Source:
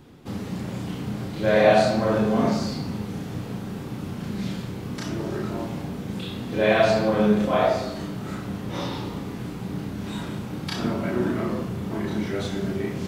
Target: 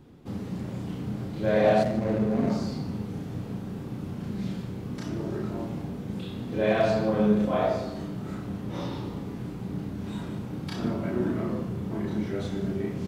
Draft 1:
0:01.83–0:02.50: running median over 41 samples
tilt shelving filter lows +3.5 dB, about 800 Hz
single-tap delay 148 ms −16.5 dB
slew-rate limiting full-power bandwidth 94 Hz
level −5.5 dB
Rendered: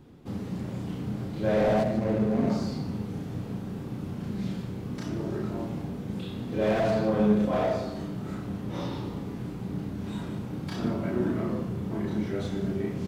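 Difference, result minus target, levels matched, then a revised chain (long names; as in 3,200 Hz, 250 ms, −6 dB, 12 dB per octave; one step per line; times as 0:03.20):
slew-rate limiting: distortion +19 dB
0:01.83–0:02.50: running median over 41 samples
tilt shelving filter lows +3.5 dB, about 800 Hz
single-tap delay 148 ms −16.5 dB
slew-rate limiting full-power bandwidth 231.5 Hz
level −5.5 dB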